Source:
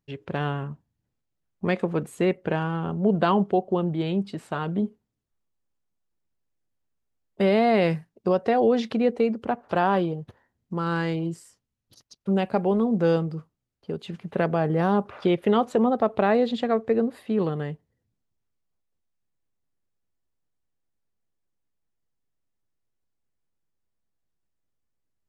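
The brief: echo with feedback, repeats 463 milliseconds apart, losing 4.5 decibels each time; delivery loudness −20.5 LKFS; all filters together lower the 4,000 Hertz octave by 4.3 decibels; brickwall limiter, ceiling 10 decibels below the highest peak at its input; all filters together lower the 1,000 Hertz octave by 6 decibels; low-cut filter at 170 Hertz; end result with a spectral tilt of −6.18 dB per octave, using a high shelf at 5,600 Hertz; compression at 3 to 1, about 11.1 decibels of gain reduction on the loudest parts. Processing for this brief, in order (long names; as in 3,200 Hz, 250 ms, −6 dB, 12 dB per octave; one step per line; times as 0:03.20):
high-pass filter 170 Hz
parametric band 1,000 Hz −9 dB
parametric band 4,000 Hz −3.5 dB
high-shelf EQ 5,600 Hz −5 dB
downward compressor 3 to 1, threshold −34 dBFS
brickwall limiter −29 dBFS
repeating echo 463 ms, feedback 60%, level −4.5 dB
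level +18 dB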